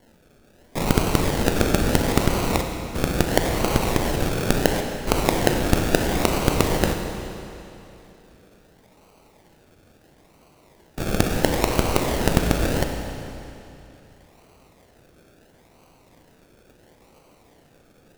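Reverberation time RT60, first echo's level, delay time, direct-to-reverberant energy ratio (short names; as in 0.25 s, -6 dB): 2.9 s, none, none, 4.0 dB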